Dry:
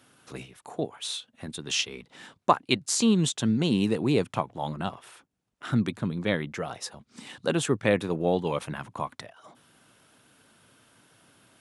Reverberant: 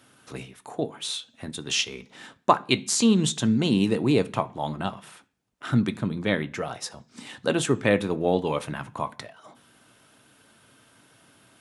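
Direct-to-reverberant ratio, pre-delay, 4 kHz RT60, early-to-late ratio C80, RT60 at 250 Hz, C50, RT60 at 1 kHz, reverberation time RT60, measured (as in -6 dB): 10.0 dB, 3 ms, 0.50 s, 26.0 dB, 0.60 s, 21.0 dB, 0.40 s, 0.45 s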